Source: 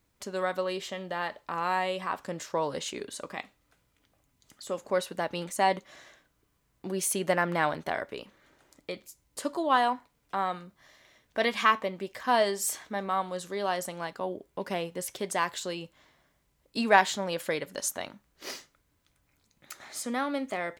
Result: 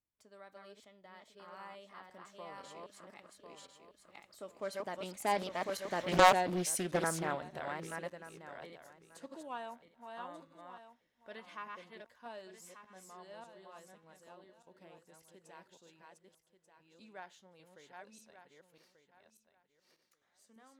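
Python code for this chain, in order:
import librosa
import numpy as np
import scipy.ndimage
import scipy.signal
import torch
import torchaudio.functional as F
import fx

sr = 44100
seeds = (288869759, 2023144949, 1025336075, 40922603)

y = fx.reverse_delay_fb(x, sr, ms=559, feedback_pct=42, wet_db=-2.0)
y = fx.doppler_pass(y, sr, speed_mps=21, closest_m=3.5, pass_at_s=6.11)
y = fx.doppler_dist(y, sr, depth_ms=0.6)
y = y * librosa.db_to_amplitude(6.5)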